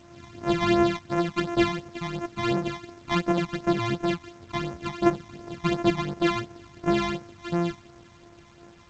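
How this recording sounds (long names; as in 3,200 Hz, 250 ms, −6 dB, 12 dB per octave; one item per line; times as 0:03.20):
a buzz of ramps at a fixed pitch in blocks of 128 samples
phaser sweep stages 12, 2.8 Hz, lowest notch 460–3,700 Hz
a quantiser's noise floor 10 bits, dither none
G.722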